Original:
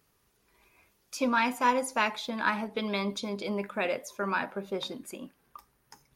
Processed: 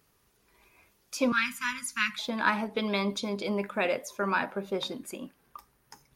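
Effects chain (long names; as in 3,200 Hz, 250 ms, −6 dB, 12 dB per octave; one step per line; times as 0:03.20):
0:01.32–0:02.19: inverse Chebyshev band-stop filter 310–830 Hz, stop band 40 dB
level +2 dB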